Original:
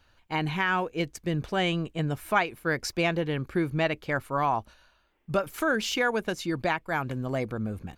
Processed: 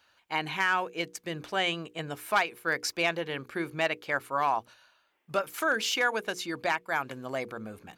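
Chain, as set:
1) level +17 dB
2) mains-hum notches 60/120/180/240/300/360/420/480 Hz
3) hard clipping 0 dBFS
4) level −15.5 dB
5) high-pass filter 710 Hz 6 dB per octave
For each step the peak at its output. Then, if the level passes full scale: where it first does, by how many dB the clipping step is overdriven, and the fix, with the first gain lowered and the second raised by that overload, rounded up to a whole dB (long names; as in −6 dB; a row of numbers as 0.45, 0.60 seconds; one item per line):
+6.5, +6.5, 0.0, −15.5, −12.5 dBFS
step 1, 6.5 dB
step 1 +10 dB, step 4 −8.5 dB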